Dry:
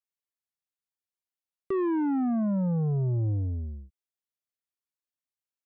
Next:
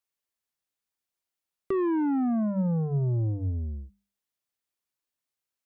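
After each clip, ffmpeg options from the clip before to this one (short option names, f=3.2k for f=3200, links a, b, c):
-filter_complex "[0:a]bandreject=f=50:t=h:w=6,bandreject=f=100:t=h:w=6,bandreject=f=150:t=h:w=6,bandreject=f=200:t=h:w=6,asplit=2[a][b];[b]acompressor=threshold=-37dB:ratio=6,volume=2dB[c];[a][c]amix=inputs=2:normalize=0,volume=-2dB"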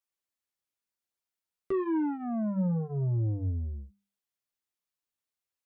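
-af "flanger=delay=9.3:depth=1.8:regen=-24:speed=0.96:shape=sinusoidal"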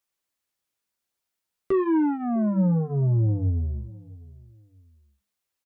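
-filter_complex "[0:a]asplit=2[a][b];[b]adelay=653,lowpass=f=810:p=1,volume=-20dB,asplit=2[c][d];[d]adelay=653,lowpass=f=810:p=1,volume=0.28[e];[a][c][e]amix=inputs=3:normalize=0,volume=7dB"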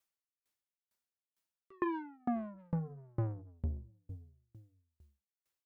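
-filter_complex "[0:a]acrossover=split=740[a][b];[a]asoftclip=type=tanh:threshold=-29dB[c];[c][b]amix=inputs=2:normalize=0,aeval=exprs='val(0)*pow(10,-38*if(lt(mod(2.2*n/s,1),2*abs(2.2)/1000),1-mod(2.2*n/s,1)/(2*abs(2.2)/1000),(mod(2.2*n/s,1)-2*abs(2.2)/1000)/(1-2*abs(2.2)/1000))/20)':c=same,volume=1dB"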